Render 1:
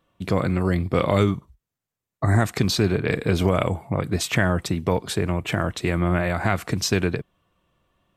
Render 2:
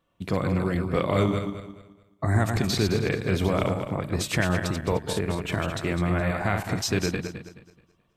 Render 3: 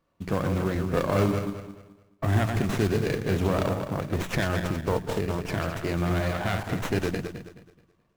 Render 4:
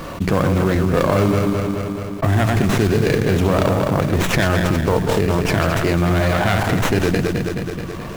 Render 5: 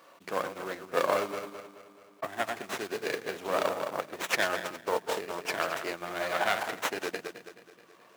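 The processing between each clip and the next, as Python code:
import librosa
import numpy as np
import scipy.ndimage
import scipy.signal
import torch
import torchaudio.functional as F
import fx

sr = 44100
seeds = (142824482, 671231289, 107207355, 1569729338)

y1 = fx.reverse_delay_fb(x, sr, ms=107, feedback_pct=55, wet_db=-5.0)
y1 = y1 * librosa.db_to_amplitude(-4.5)
y2 = fx.hum_notches(y1, sr, base_hz=60, count=3)
y2 = fx.mod_noise(y2, sr, seeds[0], snr_db=21)
y2 = fx.running_max(y2, sr, window=9)
y3 = fx.env_flatten(y2, sr, amount_pct=70)
y3 = y3 * librosa.db_to_amplitude(4.5)
y4 = scipy.signal.sosfilt(scipy.signal.butter(2, 510.0, 'highpass', fs=sr, output='sos'), y3)
y4 = fx.upward_expand(y4, sr, threshold_db=-30.0, expansion=2.5)
y4 = y4 * librosa.db_to_amplitude(-4.5)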